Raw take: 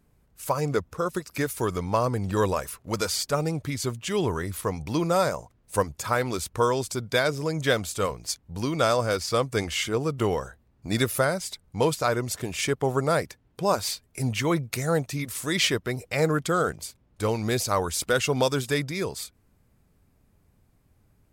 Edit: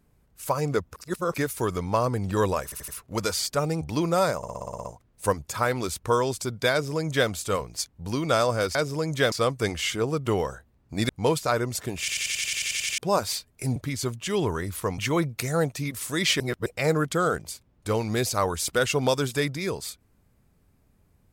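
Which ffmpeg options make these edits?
-filter_complex "[0:a]asplit=33[a][b][c][d][e][f][g][h][i][j][k][l][m][n][o][p][q][r][s][t][u][v][w][x][y][z][aa][ab][ac][ad][ae][af][ag];[a]atrim=end=0.962[ah];[b]atrim=start=0.958:end=1.342,asetpts=PTS-STARTPTS,areverse[ai];[c]atrim=start=1.338:end=2.722[aj];[d]atrim=start=2.638:end=2.722[ak];[e]atrim=start=2.638:end=2.722[al];[f]atrim=start=2.638:end=3.572[am];[g]atrim=start=4.788:end=5.412[an];[h]atrim=start=5.348:end=5.412[ao];[i]atrim=start=5.348:end=5.412[ap];[j]atrim=start=5.348:end=5.412[aq];[k]atrim=start=5.348:end=5.412[ar];[l]atrim=start=5.348:end=5.412[as];[m]atrim=start=5.348:end=5.412[at];[n]atrim=start=5.348:end=5.412[au];[o]atrim=start=5.348:end=9.252[av];[p]atrim=start=7.218:end=7.792[aw];[q]atrim=start=9.248:end=11.022[ax];[r]atrim=start=11.648:end=12.642[ay];[s]atrim=start=12.548:end=12.642[az];[t]atrim=start=12.548:end=12.642[ba];[u]atrim=start=12.548:end=12.642[bb];[v]atrim=start=12.548:end=12.642[bc];[w]atrim=start=12.548:end=12.642[bd];[x]atrim=start=12.548:end=12.642[be];[y]atrim=start=12.548:end=12.642[bf];[z]atrim=start=12.548:end=12.642[bg];[aa]atrim=start=12.548:end=12.642[bh];[ab]atrim=start=12.548:end=12.642[bi];[ac]atrim=start=13.538:end=14.322[bj];[ad]atrim=start=3.568:end=4.792[bk];[ae]atrim=start=14.318:end=15.742[bl];[af]atrim=start=15.738:end=16.002,asetpts=PTS-STARTPTS,areverse[bm];[ag]atrim=start=15.998[bn];[ah][ai]acrossfade=d=0.004:c1=hsin:c2=hsin[bo];[bo][aj]acrossfade=d=0.004:c1=hsin:c2=hsin[bp];[bp][ak]acrossfade=d=0.004:c1=hsin:c2=hsin[bq];[bq][al]acrossfade=d=0.004:c1=hsin:c2=hsin[br];[br][am]acrossfade=d=0.004:c1=hsin:c2=hsin[bs];[bs][an]acrossfade=d=0.004:c1=hsin:c2=hsin[bt];[bt][ao]acrossfade=d=0.004:c1=hsin:c2=hsin[bu];[bu][ap]acrossfade=d=0.004:c1=hsin:c2=hsin[bv];[bv][aq]acrossfade=d=0.004:c1=hsin:c2=hsin[bw];[bw][ar]acrossfade=d=0.004:c1=hsin:c2=hsin[bx];[bx][as]acrossfade=d=0.004:c1=hsin:c2=hsin[by];[by][at]acrossfade=d=0.004:c1=hsin:c2=hsin[bz];[bz][au]acrossfade=d=0.004:c1=hsin:c2=hsin[ca];[ca][av]acrossfade=d=0.004:c1=hsin:c2=hsin[cb];[cb][aw]acrossfade=d=0.004:c1=hsin:c2=hsin[cc];[cc][ax]acrossfade=d=0.004:c1=hsin:c2=hsin[cd];[cd][ay]acrossfade=d=0.004:c1=hsin:c2=hsin[ce];[ce][az]acrossfade=d=0.004:c1=hsin:c2=hsin[cf];[cf][ba]acrossfade=d=0.004:c1=hsin:c2=hsin[cg];[cg][bb]acrossfade=d=0.004:c1=hsin:c2=hsin[ch];[ch][bc]acrossfade=d=0.004:c1=hsin:c2=hsin[ci];[ci][bd]acrossfade=d=0.004:c1=hsin:c2=hsin[cj];[cj][be]acrossfade=d=0.004:c1=hsin:c2=hsin[ck];[ck][bf]acrossfade=d=0.004:c1=hsin:c2=hsin[cl];[cl][bg]acrossfade=d=0.004:c1=hsin:c2=hsin[cm];[cm][bh]acrossfade=d=0.004:c1=hsin:c2=hsin[cn];[cn][bi]acrossfade=d=0.004:c1=hsin:c2=hsin[co];[co][bj]acrossfade=d=0.004:c1=hsin:c2=hsin[cp];[cp][bk]acrossfade=d=0.004:c1=hsin:c2=hsin[cq];[cq][bl]acrossfade=d=0.004:c1=hsin:c2=hsin[cr];[cr][bm]acrossfade=d=0.004:c1=hsin:c2=hsin[cs];[cs][bn]acrossfade=d=0.004:c1=hsin:c2=hsin"

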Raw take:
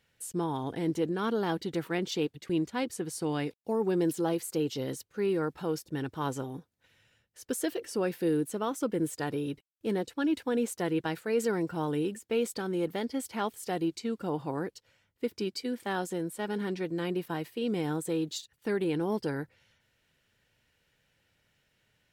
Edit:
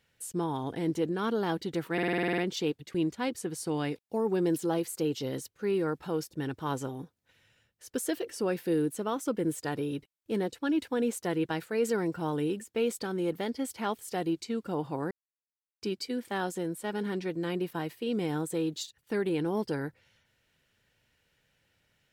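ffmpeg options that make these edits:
-filter_complex "[0:a]asplit=12[a][b][c][d][e][f][g][h][i][j][k][l];[a]atrim=end=1.982[m];[b]atrim=start=1.928:end=1.982[n];[c]atrim=start=1.928:end=1.982[o];[d]atrim=start=1.928:end=1.982[p];[e]atrim=start=1.928:end=1.982[q];[f]atrim=start=1.928:end=1.982[r];[g]atrim=start=1.928:end=1.982[s];[h]atrim=start=1.928:end=1.982[t];[i]atrim=start=1.928:end=1.982[u];[j]atrim=start=1.928:end=14.66,asetpts=PTS-STARTPTS,afade=t=out:st=12.728:d=0.004:c=hsin[v];[k]atrim=start=14.66:end=15.37,asetpts=PTS-STARTPTS,volume=0[w];[l]atrim=start=15.37,asetpts=PTS-STARTPTS,afade=t=in:d=0.004:c=hsin[x];[m][n]acrossfade=d=0.004:c1=hsin:c2=hsin[y];[y][o]acrossfade=d=0.004:c1=hsin:c2=hsin[z];[z][p]acrossfade=d=0.004:c1=hsin:c2=hsin[aa];[aa][q]acrossfade=d=0.004:c1=hsin:c2=hsin[ab];[ab][r]acrossfade=d=0.004:c1=hsin:c2=hsin[ac];[ac][s]acrossfade=d=0.004:c1=hsin:c2=hsin[ad];[ad][t]acrossfade=d=0.004:c1=hsin:c2=hsin[ae];[ae][u]acrossfade=d=0.004:c1=hsin:c2=hsin[af];[v][w][x]concat=n=3:v=0:a=1[ag];[af][ag]acrossfade=d=0.004:c1=hsin:c2=hsin"

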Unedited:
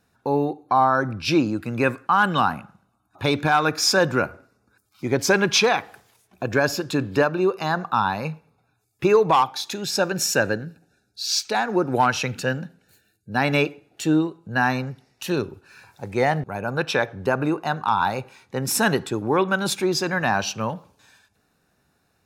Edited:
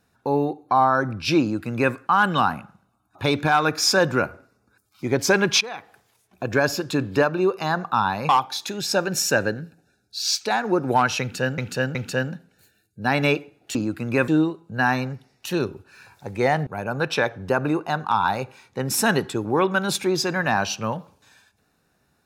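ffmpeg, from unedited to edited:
-filter_complex "[0:a]asplit=7[a][b][c][d][e][f][g];[a]atrim=end=5.61,asetpts=PTS-STARTPTS,afade=t=out:st=5.606:d=0.004:c=hsin:silence=0.105925[h];[b]atrim=start=5.61:end=8.292,asetpts=PTS-STARTPTS,afade=t=in:d=0.94:silence=0.105925[i];[c]atrim=start=9.328:end=12.622[j];[d]atrim=start=12.248:end=12.622[k];[e]atrim=start=12.248:end=14.052[l];[f]atrim=start=1.408:end=1.942[m];[g]atrim=start=14.048[n];[h][i]concat=n=2:v=0:a=1[o];[o][j]acrossfade=d=0.004:c1=hsin:c2=hsin[p];[p][k]acrossfade=d=0.004:c1=hsin:c2=hsin[q];[q][l]acrossfade=d=0.004:c1=hsin:c2=hsin[r];[r][m]acrossfade=d=0.004:c1=hsin:c2=hsin[s];[s][n]acrossfade=d=0.004:c1=hsin:c2=hsin"

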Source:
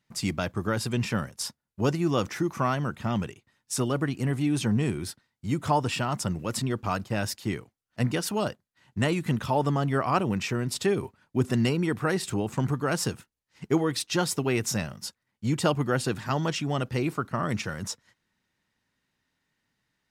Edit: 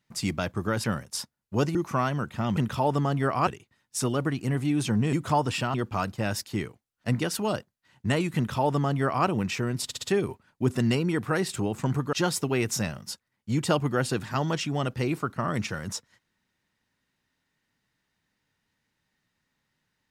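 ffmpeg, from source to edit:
-filter_complex "[0:a]asplit=11[a][b][c][d][e][f][g][h][i][j][k];[a]atrim=end=0.842[l];[b]atrim=start=1.098:end=2.012[m];[c]atrim=start=2.408:end=3.232[n];[d]atrim=start=9.278:end=10.182[o];[e]atrim=start=3.228:end=4.892[p];[f]atrim=start=5.508:end=6.122[q];[g]atrim=start=6.658:end=10.832[r];[h]atrim=start=10.768:end=10.832[s];[i]atrim=start=10.768:end=10.832[t];[j]atrim=start=10.768:end=12.872[u];[k]atrim=start=14.078[v];[l][m]acrossfade=d=0.004:c1=hsin:c2=hsin[w];[w][n]acrossfade=d=0.004:c1=hsin:c2=hsin[x];[x][o]acrossfade=d=0.004:c1=hsin:c2=hsin[y];[y][p]acrossfade=d=0.004:c1=hsin:c2=hsin[z];[z][q]acrossfade=d=0.004:c1=hsin:c2=hsin[aa];[aa][r]acrossfade=d=0.004:c1=hsin:c2=hsin[ab];[ab][s]acrossfade=d=0.004:c1=hsin:c2=hsin[ac];[ac][t]acrossfade=d=0.004:c1=hsin:c2=hsin[ad];[ad][u]acrossfade=d=0.004:c1=hsin:c2=hsin[ae];[ae][v]acrossfade=d=0.004:c1=hsin:c2=hsin"

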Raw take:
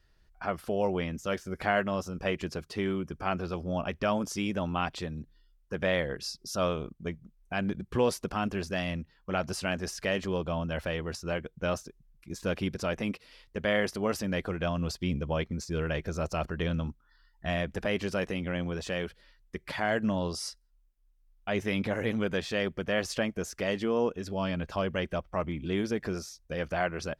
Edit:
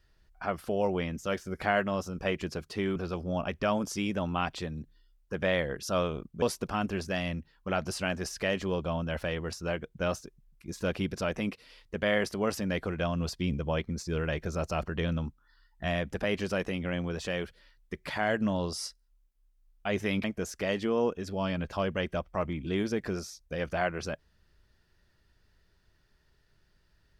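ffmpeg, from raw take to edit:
-filter_complex "[0:a]asplit=5[a][b][c][d][e];[a]atrim=end=2.962[f];[b]atrim=start=3.358:end=6.232[g];[c]atrim=start=6.488:end=7.082[h];[d]atrim=start=8.038:end=21.862[i];[e]atrim=start=23.228[j];[f][g]acrossfade=d=0.004:c1=hsin:c2=hsin[k];[k][h]acrossfade=d=0.004:c1=hsin:c2=hsin[l];[l][i]acrossfade=d=0.004:c1=hsin:c2=hsin[m];[m][j]acrossfade=d=0.004:c1=hsin:c2=hsin"

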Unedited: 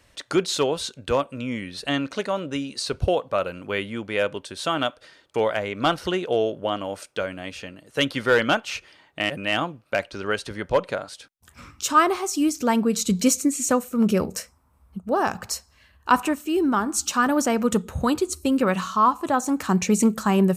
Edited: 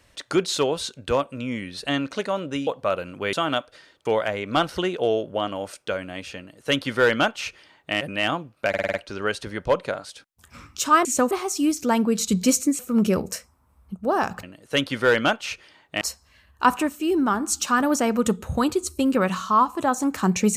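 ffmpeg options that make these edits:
-filter_complex "[0:a]asplit=13[a][b][c][d][e][f][g][h][i][j][k][l][m];[a]atrim=end=2.672[n];[b]atrim=start=3.148:end=3.812[o];[c]atrim=start=4.618:end=10.032[p];[d]atrim=start=9.978:end=10.032[q];[e]atrim=start=9.978:end=10.032[r];[f]atrim=start=9.978:end=10.032[s];[g]atrim=start=9.978:end=10.032[t];[h]atrim=start=9.978:end=12.092[u];[i]atrim=start=13.568:end=13.832[v];[j]atrim=start=12.088:end=13.572[w];[k]atrim=start=13.828:end=15.472[x];[l]atrim=start=7.668:end=9.252[y];[m]atrim=start=15.468[z];[n][o]acrossfade=d=0.004:c1=hsin:c2=hsin[aa];[aa][p]acrossfade=d=0.004:c1=hsin:c2=hsin[ab];[ab][q]acrossfade=d=0.004:c1=hsin:c2=hsin[ac];[ac][r]acrossfade=d=0.004:c1=hsin:c2=hsin[ad];[ad][s]acrossfade=d=0.004:c1=hsin:c2=hsin[ae];[ae][t]acrossfade=d=0.004:c1=hsin:c2=hsin[af];[af][u]acrossfade=d=0.004:c1=hsin:c2=hsin[ag];[ag][v]acrossfade=d=0.004:c1=hsin:c2=hsin[ah];[ah][w]acrossfade=d=0.004:c1=hsin:c2=hsin[ai];[ai][x]acrossfade=d=0.004:c1=hsin:c2=hsin[aj];[aj][y]acrossfade=d=0.004:c1=hsin:c2=hsin[ak];[ak][z]acrossfade=d=0.004:c1=hsin:c2=hsin"

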